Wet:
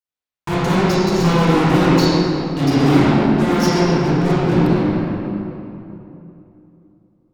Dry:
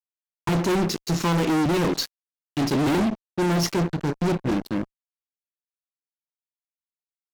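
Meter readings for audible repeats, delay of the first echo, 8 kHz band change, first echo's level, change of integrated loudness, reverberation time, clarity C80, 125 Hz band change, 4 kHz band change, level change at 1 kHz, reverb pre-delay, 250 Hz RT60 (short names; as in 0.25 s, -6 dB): none, none, +2.0 dB, none, +8.0 dB, 3.0 s, -3.0 dB, +9.5 dB, +5.5 dB, +8.5 dB, 21 ms, 3.3 s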